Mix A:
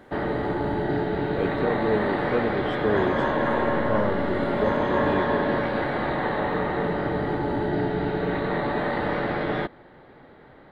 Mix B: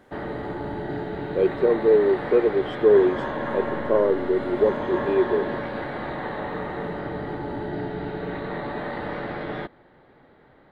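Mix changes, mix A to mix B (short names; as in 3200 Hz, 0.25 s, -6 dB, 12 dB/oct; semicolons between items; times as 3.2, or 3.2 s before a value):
speech: add resonant high-pass 400 Hz, resonance Q 3.4; background -5.0 dB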